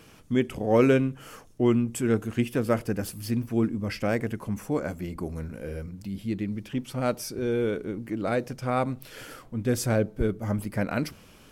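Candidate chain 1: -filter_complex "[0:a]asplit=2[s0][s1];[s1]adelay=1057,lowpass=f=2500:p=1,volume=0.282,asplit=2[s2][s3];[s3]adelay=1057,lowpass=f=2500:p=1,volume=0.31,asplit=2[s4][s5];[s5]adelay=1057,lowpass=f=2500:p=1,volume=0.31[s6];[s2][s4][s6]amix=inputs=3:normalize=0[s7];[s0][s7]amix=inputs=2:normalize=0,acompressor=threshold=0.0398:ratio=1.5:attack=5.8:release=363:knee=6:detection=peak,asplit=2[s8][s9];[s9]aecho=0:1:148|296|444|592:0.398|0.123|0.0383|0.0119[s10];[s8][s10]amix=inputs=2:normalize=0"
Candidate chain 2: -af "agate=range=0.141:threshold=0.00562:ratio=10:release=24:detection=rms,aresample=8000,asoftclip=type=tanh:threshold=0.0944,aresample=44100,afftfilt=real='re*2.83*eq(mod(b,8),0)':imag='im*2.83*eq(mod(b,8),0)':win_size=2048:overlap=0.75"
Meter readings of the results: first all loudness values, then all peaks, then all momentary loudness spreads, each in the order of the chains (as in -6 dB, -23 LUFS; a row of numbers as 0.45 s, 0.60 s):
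-30.5 LUFS, -35.5 LUFS; -12.5 dBFS, -18.0 dBFS; 8 LU, 10 LU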